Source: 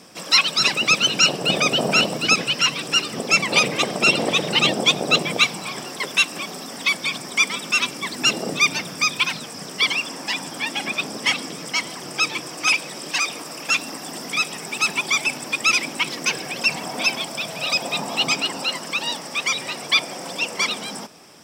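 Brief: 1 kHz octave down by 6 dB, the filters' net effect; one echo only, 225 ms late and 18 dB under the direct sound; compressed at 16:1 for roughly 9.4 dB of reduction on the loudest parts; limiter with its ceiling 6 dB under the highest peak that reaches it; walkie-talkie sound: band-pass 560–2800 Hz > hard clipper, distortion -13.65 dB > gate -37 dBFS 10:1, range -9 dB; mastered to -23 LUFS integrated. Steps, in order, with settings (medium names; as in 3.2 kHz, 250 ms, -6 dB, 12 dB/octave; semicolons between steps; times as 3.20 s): peaking EQ 1 kHz -7.5 dB; compression 16:1, threshold -21 dBFS; peak limiter -16.5 dBFS; band-pass 560–2800 Hz; delay 225 ms -18 dB; hard clipper -27.5 dBFS; gate -37 dBFS 10:1, range -9 dB; trim +9.5 dB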